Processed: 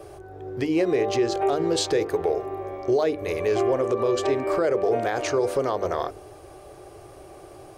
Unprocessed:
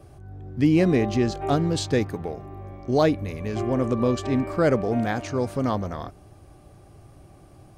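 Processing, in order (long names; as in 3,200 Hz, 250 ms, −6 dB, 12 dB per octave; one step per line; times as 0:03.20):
downward compressor 6 to 1, threshold −25 dBFS, peak gain reduction 10.5 dB
low shelf with overshoot 300 Hz −9 dB, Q 3
mains-hum notches 50/100/150/200/250/300/350/400/450/500 Hz
brickwall limiter −21.5 dBFS, peak gain reduction 7 dB
level +8 dB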